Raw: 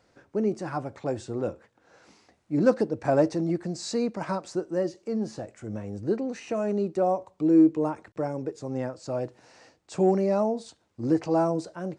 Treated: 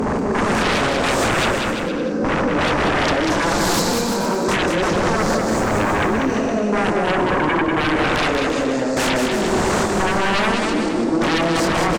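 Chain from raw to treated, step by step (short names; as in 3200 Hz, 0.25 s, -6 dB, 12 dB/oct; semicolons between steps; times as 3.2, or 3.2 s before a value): spectral swells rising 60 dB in 1.72 s; resonant low shelf 150 Hz -9 dB, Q 3; in parallel at +2 dB: compressor, threshold -26 dBFS, peak gain reduction 14 dB; 5.17–5.91 on the sum: added noise white -59 dBFS; vocal rider within 4 dB 0.5 s; step gate "x.xxx.xxx...." 87 bpm -12 dB; chorus voices 4, 0.84 Hz, delay 27 ms, depth 3.9 ms; sine folder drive 18 dB, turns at -8.5 dBFS; limiter -17 dBFS, peak gain reduction 9 dB; on a send: bouncing-ball echo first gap 0.19 s, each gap 0.8×, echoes 5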